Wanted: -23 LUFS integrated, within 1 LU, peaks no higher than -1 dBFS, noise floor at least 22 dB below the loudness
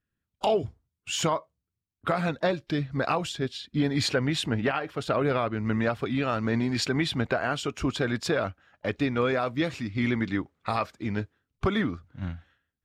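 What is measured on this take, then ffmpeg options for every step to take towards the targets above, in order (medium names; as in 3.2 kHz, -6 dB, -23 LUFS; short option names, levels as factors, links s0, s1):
loudness -28.5 LUFS; peak level -15.0 dBFS; loudness target -23.0 LUFS
-> -af "volume=1.88"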